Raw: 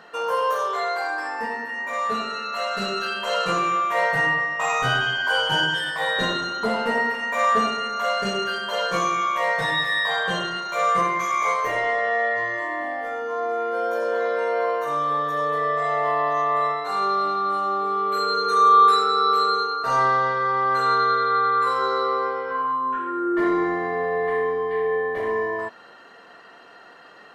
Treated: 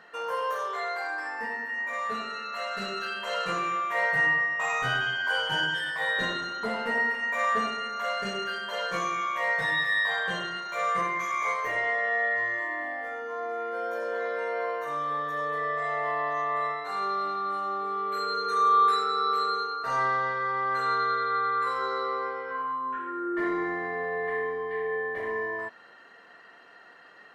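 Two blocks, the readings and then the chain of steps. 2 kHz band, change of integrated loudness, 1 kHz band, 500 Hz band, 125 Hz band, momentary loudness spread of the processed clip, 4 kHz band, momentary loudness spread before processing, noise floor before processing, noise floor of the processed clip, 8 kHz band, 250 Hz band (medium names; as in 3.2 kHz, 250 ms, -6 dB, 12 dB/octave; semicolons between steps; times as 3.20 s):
-2.5 dB, -6.0 dB, -7.0 dB, -8.0 dB, -8.0 dB, 8 LU, -7.0 dB, 7 LU, -47 dBFS, -52 dBFS, -8.0 dB, -8.0 dB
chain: peaking EQ 1.9 kHz +6.5 dB 0.62 oct; trim -8 dB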